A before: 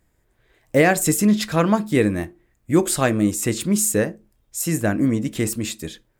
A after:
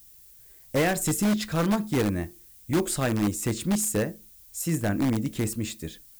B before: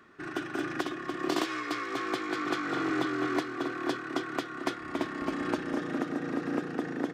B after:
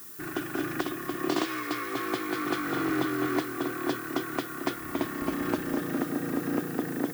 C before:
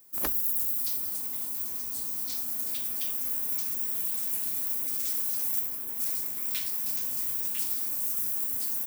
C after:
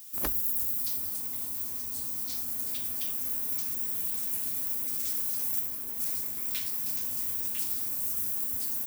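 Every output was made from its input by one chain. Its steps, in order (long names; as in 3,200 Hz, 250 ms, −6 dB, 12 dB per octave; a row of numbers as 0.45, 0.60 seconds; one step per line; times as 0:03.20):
low-shelf EQ 180 Hz +7 dB
in parallel at −7 dB: wrap-around overflow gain 10 dB
on the sum: background noise violet −42 dBFS
normalise the peak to −12 dBFS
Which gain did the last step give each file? −10.0, −3.0, −4.5 decibels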